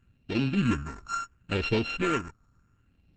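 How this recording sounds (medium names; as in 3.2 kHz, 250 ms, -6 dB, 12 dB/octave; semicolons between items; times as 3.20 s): a buzz of ramps at a fixed pitch in blocks of 32 samples; phasing stages 4, 0.71 Hz, lowest notch 530–1200 Hz; Opus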